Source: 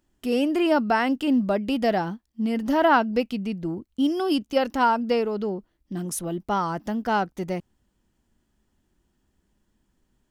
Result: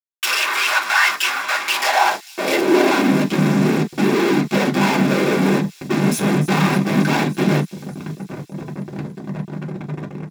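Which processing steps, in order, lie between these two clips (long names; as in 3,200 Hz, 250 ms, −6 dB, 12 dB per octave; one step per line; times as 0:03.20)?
spectral tilt +2.5 dB per octave, from 0:02.60 −4 dB per octave
downward compressor, threshold −23 dBFS, peak gain reduction 11.5 dB
brickwall limiter −24.5 dBFS, peak gain reduction 10.5 dB
transient designer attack +8 dB, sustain −5 dB
random phases in short frames
fuzz pedal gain 54 dB, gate −50 dBFS
high-pass filter sweep 1,200 Hz → 170 Hz, 0:01.65–0:03.28
delay with a high-pass on its return 294 ms, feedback 72%, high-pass 5,100 Hz, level −13 dB
convolution reverb, pre-delay 3 ms, DRR 0.5 dB
level −6.5 dB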